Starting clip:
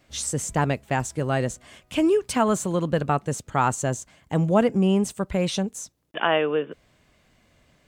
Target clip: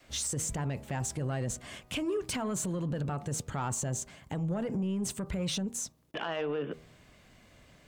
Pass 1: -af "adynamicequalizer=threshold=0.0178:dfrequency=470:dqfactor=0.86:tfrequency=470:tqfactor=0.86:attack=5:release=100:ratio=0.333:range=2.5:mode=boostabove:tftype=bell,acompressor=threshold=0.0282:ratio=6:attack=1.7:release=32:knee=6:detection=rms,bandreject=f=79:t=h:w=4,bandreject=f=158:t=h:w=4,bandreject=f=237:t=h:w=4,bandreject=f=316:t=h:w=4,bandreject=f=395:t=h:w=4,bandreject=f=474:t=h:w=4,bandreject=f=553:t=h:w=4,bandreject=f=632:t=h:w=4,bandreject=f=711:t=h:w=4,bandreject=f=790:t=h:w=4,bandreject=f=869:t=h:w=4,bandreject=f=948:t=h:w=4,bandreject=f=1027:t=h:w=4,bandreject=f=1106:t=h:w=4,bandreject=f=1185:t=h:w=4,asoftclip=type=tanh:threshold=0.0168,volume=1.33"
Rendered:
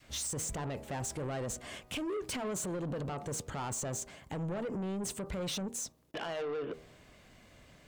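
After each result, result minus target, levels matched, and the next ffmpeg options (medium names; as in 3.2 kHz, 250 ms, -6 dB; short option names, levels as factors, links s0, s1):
saturation: distortion +10 dB; 125 Hz band -3.0 dB
-af "adynamicequalizer=threshold=0.0178:dfrequency=470:dqfactor=0.86:tfrequency=470:tqfactor=0.86:attack=5:release=100:ratio=0.333:range=2.5:mode=boostabove:tftype=bell,acompressor=threshold=0.0282:ratio=6:attack=1.7:release=32:knee=6:detection=rms,bandreject=f=79:t=h:w=4,bandreject=f=158:t=h:w=4,bandreject=f=237:t=h:w=4,bandreject=f=316:t=h:w=4,bandreject=f=395:t=h:w=4,bandreject=f=474:t=h:w=4,bandreject=f=553:t=h:w=4,bandreject=f=632:t=h:w=4,bandreject=f=711:t=h:w=4,bandreject=f=790:t=h:w=4,bandreject=f=869:t=h:w=4,bandreject=f=948:t=h:w=4,bandreject=f=1027:t=h:w=4,bandreject=f=1106:t=h:w=4,bandreject=f=1185:t=h:w=4,asoftclip=type=tanh:threshold=0.0447,volume=1.33"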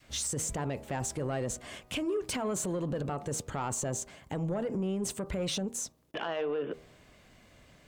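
125 Hz band -3.0 dB
-af "adynamicequalizer=threshold=0.0178:dfrequency=140:dqfactor=0.86:tfrequency=140:tqfactor=0.86:attack=5:release=100:ratio=0.333:range=2.5:mode=boostabove:tftype=bell,acompressor=threshold=0.0282:ratio=6:attack=1.7:release=32:knee=6:detection=rms,bandreject=f=79:t=h:w=4,bandreject=f=158:t=h:w=4,bandreject=f=237:t=h:w=4,bandreject=f=316:t=h:w=4,bandreject=f=395:t=h:w=4,bandreject=f=474:t=h:w=4,bandreject=f=553:t=h:w=4,bandreject=f=632:t=h:w=4,bandreject=f=711:t=h:w=4,bandreject=f=790:t=h:w=4,bandreject=f=869:t=h:w=4,bandreject=f=948:t=h:w=4,bandreject=f=1027:t=h:w=4,bandreject=f=1106:t=h:w=4,bandreject=f=1185:t=h:w=4,asoftclip=type=tanh:threshold=0.0447,volume=1.33"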